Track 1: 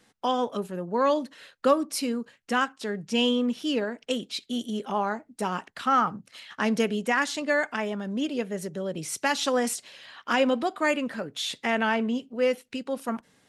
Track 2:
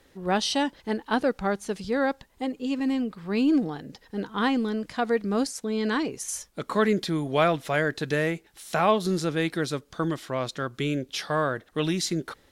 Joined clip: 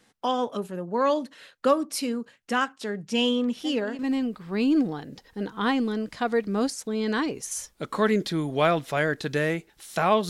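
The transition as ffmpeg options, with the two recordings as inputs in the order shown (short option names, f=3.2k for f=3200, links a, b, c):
-filter_complex "[1:a]asplit=2[a][b];[0:a]apad=whole_dur=10.29,atrim=end=10.29,atrim=end=3.992[c];[b]atrim=start=2.758:end=9.06[d];[a]atrim=start=2.2:end=2.76,asetpts=PTS-STARTPTS,volume=-10.5dB,afade=t=in:d=0.004:c=hsin,afade=t=out:st=0.556:d=0.004:c=hsin,adelay=3430[e];[c][d]acrossfade=d=0.004:c1=hsin:c2=hsin[f];[f][e]amix=inputs=2:normalize=0"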